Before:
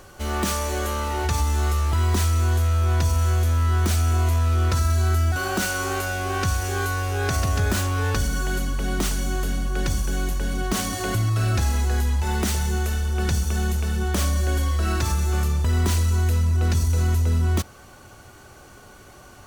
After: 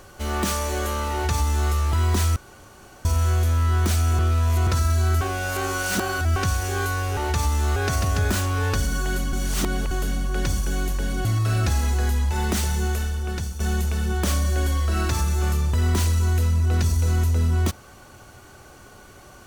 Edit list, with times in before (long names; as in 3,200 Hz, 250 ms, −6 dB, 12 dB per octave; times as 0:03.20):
0:01.12–0:01.71: duplicate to 0:07.17
0:02.36–0:03.05: fill with room tone
0:04.19–0:04.67: reverse
0:05.21–0:06.36: reverse
0:08.74–0:09.32: reverse
0:10.66–0:11.16: remove
0:12.82–0:13.51: fade out, to −10 dB